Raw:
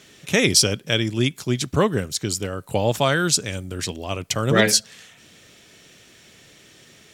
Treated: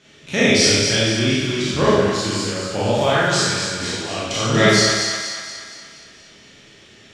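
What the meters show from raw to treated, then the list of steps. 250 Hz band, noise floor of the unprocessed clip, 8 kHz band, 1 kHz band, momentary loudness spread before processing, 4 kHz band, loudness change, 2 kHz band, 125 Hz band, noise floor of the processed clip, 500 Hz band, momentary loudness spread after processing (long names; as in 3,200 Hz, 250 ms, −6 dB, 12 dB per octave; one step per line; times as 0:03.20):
+4.0 dB, −51 dBFS, +1.0 dB, +5.0 dB, 12 LU, +4.5 dB, +3.5 dB, +5.0 dB, +2.0 dB, −47 dBFS, +4.5 dB, 13 LU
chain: peak hold with a decay on every bin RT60 0.64 s
low-pass filter 5,400 Hz 12 dB per octave
echo with a time of its own for lows and highs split 760 Hz, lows 107 ms, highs 236 ms, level −6 dB
four-comb reverb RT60 0.75 s, combs from 27 ms, DRR −6 dB
level −6 dB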